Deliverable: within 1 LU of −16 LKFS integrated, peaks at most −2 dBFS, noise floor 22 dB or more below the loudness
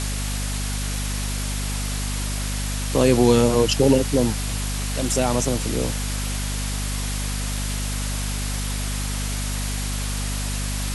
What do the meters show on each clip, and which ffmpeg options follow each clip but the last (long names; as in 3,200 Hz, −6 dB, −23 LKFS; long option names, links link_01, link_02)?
mains hum 50 Hz; hum harmonics up to 250 Hz; level of the hum −24 dBFS; background noise floor −26 dBFS; target noise floor −46 dBFS; integrated loudness −23.5 LKFS; sample peak −4.0 dBFS; target loudness −16.0 LKFS
→ -af "bandreject=frequency=50:width_type=h:width=6,bandreject=frequency=100:width_type=h:width=6,bandreject=frequency=150:width_type=h:width=6,bandreject=frequency=200:width_type=h:width=6,bandreject=frequency=250:width_type=h:width=6"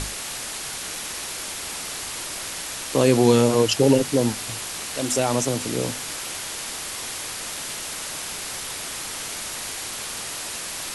mains hum none found; background noise floor −33 dBFS; target noise floor −47 dBFS
→ -af "afftdn=noise_reduction=14:noise_floor=-33"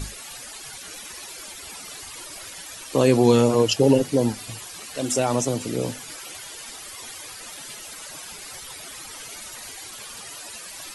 background noise floor −39 dBFS; target noise floor −48 dBFS
→ -af "afftdn=noise_reduction=9:noise_floor=-39"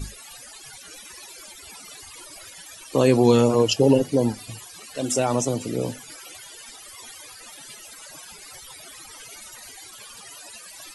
background noise floor −44 dBFS; integrated loudness −21.0 LKFS; sample peak −5.5 dBFS; target loudness −16.0 LKFS
→ -af "volume=5dB,alimiter=limit=-2dB:level=0:latency=1"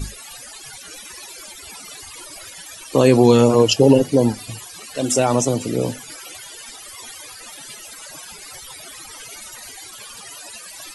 integrated loudness −16.5 LKFS; sample peak −2.0 dBFS; background noise floor −39 dBFS